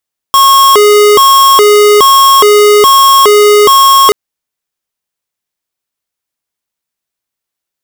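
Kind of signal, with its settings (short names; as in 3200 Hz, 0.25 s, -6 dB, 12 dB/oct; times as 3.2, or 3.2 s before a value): siren hi-lo 416–1090 Hz 1.2/s square -4 dBFS 3.78 s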